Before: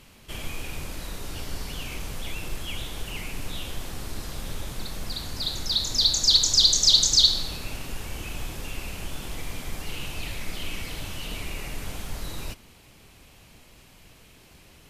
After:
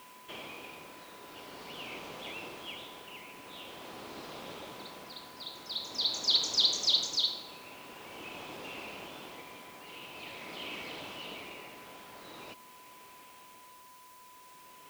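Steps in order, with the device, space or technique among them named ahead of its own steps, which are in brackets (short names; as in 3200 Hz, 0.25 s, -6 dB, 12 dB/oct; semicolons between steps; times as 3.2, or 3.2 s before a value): shortwave radio (BPF 330–3000 Hz; tremolo 0.46 Hz, depth 58%; whine 1000 Hz -54 dBFS; white noise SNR 21 dB); dynamic EQ 1700 Hz, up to -6 dB, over -55 dBFS, Q 2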